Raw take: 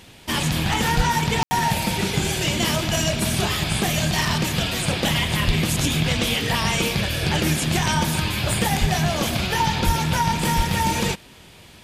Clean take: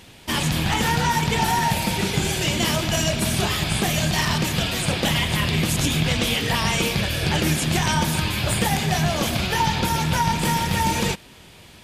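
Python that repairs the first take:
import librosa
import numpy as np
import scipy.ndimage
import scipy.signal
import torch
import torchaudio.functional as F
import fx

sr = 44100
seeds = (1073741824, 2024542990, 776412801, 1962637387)

y = fx.fix_deplosive(x, sr, at_s=(0.96, 5.46, 8.8, 9.85, 10.56))
y = fx.fix_ambience(y, sr, seeds[0], print_start_s=11.19, print_end_s=11.69, start_s=1.43, end_s=1.51)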